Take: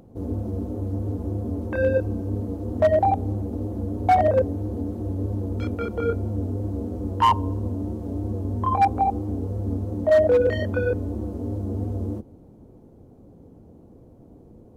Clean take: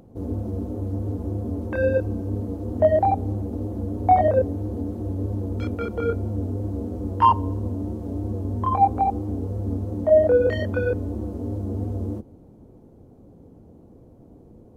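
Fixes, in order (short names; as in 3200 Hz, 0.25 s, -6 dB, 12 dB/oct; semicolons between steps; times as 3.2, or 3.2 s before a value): clip repair -12 dBFS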